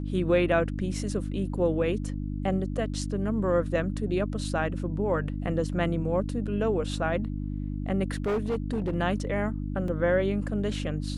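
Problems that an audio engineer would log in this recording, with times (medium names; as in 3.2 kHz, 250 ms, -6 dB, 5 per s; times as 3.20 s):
hum 50 Hz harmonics 6 -32 dBFS
8.11–8.94 s: clipped -23.5 dBFS
9.88 s: dropout 2.3 ms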